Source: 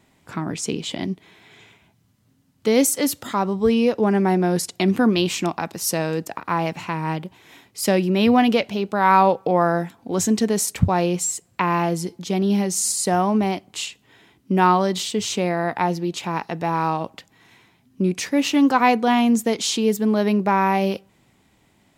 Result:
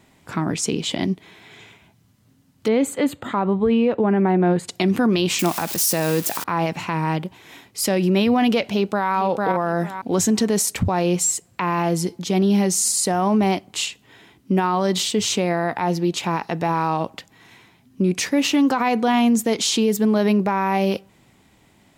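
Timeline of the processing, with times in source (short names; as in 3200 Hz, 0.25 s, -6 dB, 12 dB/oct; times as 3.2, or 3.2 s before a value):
2.68–4.68 running mean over 8 samples
5.39–6.44 switching spikes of -21 dBFS
8.64–9.11 echo throw 0.45 s, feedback 20%, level -5 dB
whole clip: limiter -15 dBFS; gain +4 dB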